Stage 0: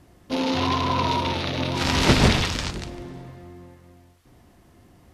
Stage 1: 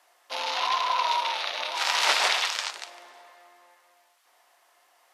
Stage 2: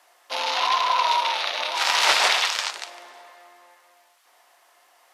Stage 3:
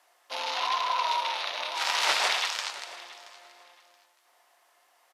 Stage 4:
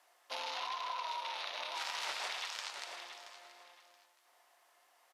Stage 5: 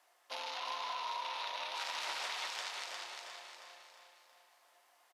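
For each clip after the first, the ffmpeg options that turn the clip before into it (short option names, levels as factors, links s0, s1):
-af "highpass=f=700:w=0.5412,highpass=f=700:w=1.3066"
-af "acontrast=80,volume=0.75"
-af "aecho=1:1:676|1352:0.119|0.0261,volume=0.473"
-af "acompressor=threshold=0.0224:ratio=6,volume=0.631"
-af "aecho=1:1:355|710|1065|1420|1775:0.631|0.259|0.106|0.0435|0.0178,volume=0.841"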